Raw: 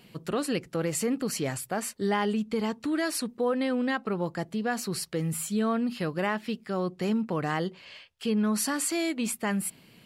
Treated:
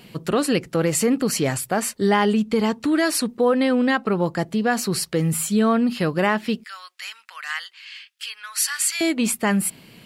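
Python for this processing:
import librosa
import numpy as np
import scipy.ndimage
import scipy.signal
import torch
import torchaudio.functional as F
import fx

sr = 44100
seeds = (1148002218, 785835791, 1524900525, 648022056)

y = fx.highpass(x, sr, hz=1500.0, slope=24, at=(6.64, 9.01))
y = y * 10.0 ** (8.5 / 20.0)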